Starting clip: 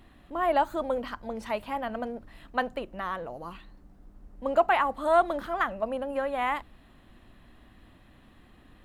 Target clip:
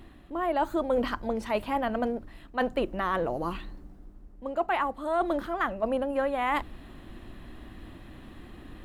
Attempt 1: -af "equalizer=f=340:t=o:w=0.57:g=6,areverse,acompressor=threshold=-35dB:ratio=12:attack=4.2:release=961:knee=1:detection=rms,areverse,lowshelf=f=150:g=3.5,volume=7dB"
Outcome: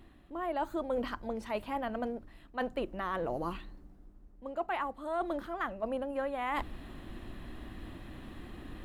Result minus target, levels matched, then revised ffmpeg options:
compressor: peak gain reduction +7 dB
-af "equalizer=f=340:t=o:w=0.57:g=6,areverse,acompressor=threshold=-27.5dB:ratio=12:attack=4.2:release=961:knee=1:detection=rms,areverse,lowshelf=f=150:g=3.5,volume=7dB"

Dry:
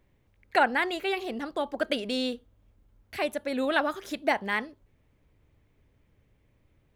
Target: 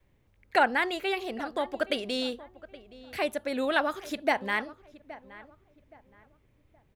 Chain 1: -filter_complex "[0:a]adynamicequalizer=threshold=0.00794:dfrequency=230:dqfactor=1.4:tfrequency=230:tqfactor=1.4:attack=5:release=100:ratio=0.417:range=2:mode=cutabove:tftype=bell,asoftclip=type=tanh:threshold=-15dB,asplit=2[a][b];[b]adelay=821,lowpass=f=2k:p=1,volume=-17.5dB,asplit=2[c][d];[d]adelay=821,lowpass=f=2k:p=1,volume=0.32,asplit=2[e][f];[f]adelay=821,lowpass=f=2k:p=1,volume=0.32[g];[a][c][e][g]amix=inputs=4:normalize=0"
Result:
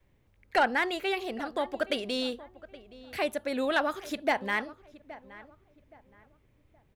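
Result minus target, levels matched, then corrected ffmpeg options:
soft clip: distortion +19 dB
-filter_complex "[0:a]adynamicequalizer=threshold=0.00794:dfrequency=230:dqfactor=1.4:tfrequency=230:tqfactor=1.4:attack=5:release=100:ratio=0.417:range=2:mode=cutabove:tftype=bell,asoftclip=type=tanh:threshold=-4dB,asplit=2[a][b];[b]adelay=821,lowpass=f=2k:p=1,volume=-17.5dB,asplit=2[c][d];[d]adelay=821,lowpass=f=2k:p=1,volume=0.32,asplit=2[e][f];[f]adelay=821,lowpass=f=2k:p=1,volume=0.32[g];[a][c][e][g]amix=inputs=4:normalize=0"

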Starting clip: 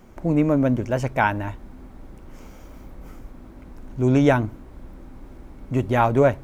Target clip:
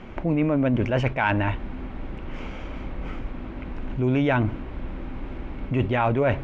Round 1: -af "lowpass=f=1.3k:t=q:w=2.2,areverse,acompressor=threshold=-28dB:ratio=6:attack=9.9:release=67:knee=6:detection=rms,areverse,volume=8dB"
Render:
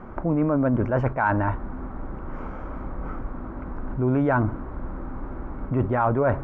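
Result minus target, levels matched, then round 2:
1000 Hz band +2.5 dB
-af "lowpass=f=2.8k:t=q:w=2.2,areverse,acompressor=threshold=-28dB:ratio=6:attack=9.9:release=67:knee=6:detection=rms,areverse,volume=8dB"

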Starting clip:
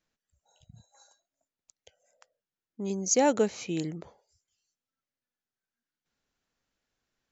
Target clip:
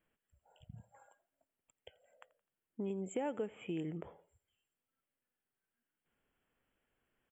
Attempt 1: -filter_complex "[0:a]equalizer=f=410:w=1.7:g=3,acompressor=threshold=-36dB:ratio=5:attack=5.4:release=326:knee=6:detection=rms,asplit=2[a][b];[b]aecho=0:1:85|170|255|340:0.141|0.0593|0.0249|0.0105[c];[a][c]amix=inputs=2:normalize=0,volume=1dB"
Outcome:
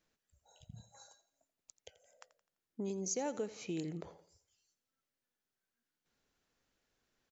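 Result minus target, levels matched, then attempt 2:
4000 Hz band +5.0 dB; echo-to-direct +6.5 dB
-filter_complex "[0:a]asuperstop=centerf=5100:order=20:qfactor=1.2,equalizer=f=410:w=1.7:g=3,acompressor=threshold=-36dB:ratio=5:attack=5.4:release=326:knee=6:detection=rms,asplit=2[a][b];[b]aecho=0:1:85|170|255:0.0668|0.0281|0.0118[c];[a][c]amix=inputs=2:normalize=0,volume=1dB"

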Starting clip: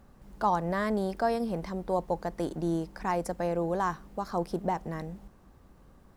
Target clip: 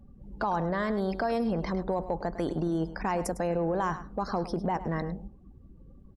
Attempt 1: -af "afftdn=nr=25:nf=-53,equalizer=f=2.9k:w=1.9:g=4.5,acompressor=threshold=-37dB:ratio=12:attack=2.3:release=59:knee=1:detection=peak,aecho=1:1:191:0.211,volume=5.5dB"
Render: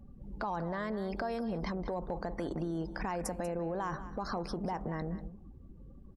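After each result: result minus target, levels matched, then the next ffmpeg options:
echo 87 ms late; compressor: peak gain reduction +7 dB
-af "afftdn=nr=25:nf=-53,equalizer=f=2.9k:w=1.9:g=4.5,acompressor=threshold=-37dB:ratio=12:attack=2.3:release=59:knee=1:detection=peak,aecho=1:1:104:0.211,volume=5.5dB"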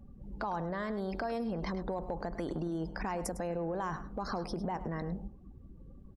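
compressor: peak gain reduction +7 dB
-af "afftdn=nr=25:nf=-53,equalizer=f=2.9k:w=1.9:g=4.5,acompressor=threshold=-29.5dB:ratio=12:attack=2.3:release=59:knee=1:detection=peak,aecho=1:1:104:0.211,volume=5.5dB"

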